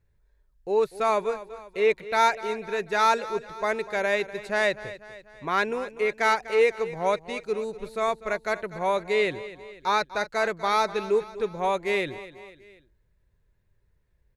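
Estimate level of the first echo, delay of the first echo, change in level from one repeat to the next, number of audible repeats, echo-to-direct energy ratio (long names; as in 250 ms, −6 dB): −15.5 dB, 246 ms, −5.5 dB, 3, −14.0 dB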